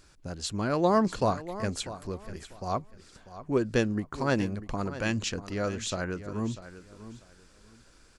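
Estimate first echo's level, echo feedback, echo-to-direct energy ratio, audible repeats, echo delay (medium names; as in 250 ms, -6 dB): -14.0 dB, 23%, -13.5 dB, 2, 644 ms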